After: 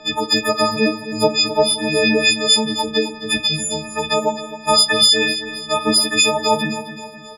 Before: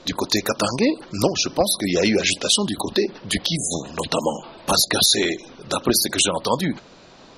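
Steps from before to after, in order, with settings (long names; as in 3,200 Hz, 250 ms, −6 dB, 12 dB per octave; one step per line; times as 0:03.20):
every partial snapped to a pitch grid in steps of 6 semitones
low-pass filter 1,100 Hz 6 dB per octave
low-shelf EQ 350 Hz −9 dB
repeating echo 263 ms, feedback 47%, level −12 dB
on a send at −8.5 dB: convolution reverb RT60 0.40 s, pre-delay 4 ms
on the sum: level +5.5 dB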